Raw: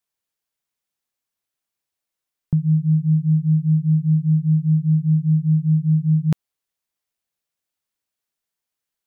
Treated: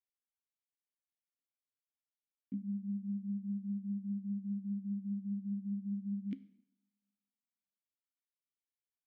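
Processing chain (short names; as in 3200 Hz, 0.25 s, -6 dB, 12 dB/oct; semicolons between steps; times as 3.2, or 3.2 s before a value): delay-line pitch shifter +4.5 st; vowel filter i; two-slope reverb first 0.73 s, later 2.1 s, from -25 dB, DRR 13.5 dB; gain -7.5 dB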